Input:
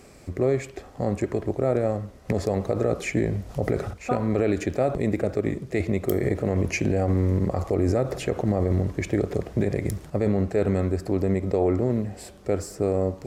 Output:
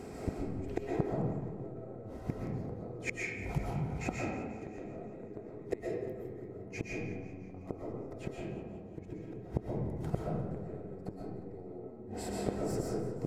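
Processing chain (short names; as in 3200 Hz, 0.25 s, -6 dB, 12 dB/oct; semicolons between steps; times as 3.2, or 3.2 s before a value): tilt shelf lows +9.5 dB; notch comb 580 Hz; compressor 5:1, threshold -21 dBFS, peak gain reduction 10.5 dB; low shelf 370 Hz -11 dB; flipped gate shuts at -26 dBFS, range -26 dB; digital reverb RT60 1.5 s, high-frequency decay 0.45×, pre-delay 90 ms, DRR -3.5 dB; warbling echo 0.177 s, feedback 62%, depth 60 cents, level -16 dB; gain +5.5 dB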